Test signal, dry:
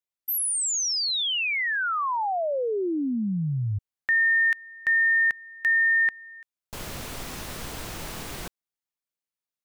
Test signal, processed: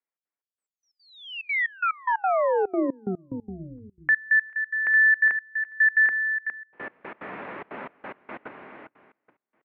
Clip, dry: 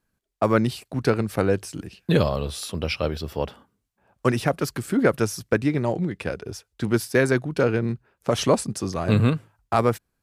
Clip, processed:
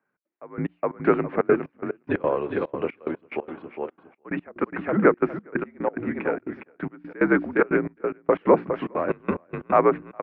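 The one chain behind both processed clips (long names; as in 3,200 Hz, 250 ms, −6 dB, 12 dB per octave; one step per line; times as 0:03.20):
mains-hum notches 60/120/180/240/300/360/420 Hz
single-sideband voice off tune −65 Hz 290–2,300 Hz
on a send: repeating echo 410 ms, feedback 24%, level −7 dB
on the sum: gate pattern "xx.xx..x..x.xxx" 181 BPM −24 dB
level +3.5 dB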